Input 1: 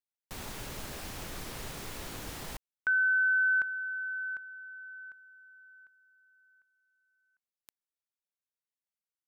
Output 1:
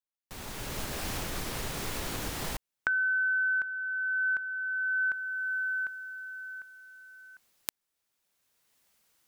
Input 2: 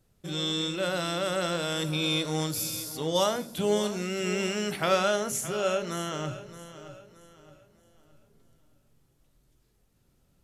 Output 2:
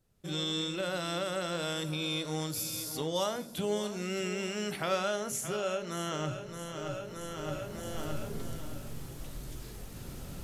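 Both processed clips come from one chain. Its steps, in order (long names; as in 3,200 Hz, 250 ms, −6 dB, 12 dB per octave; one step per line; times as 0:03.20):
camcorder AGC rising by 15 dB per second, up to +31 dB
level −6.5 dB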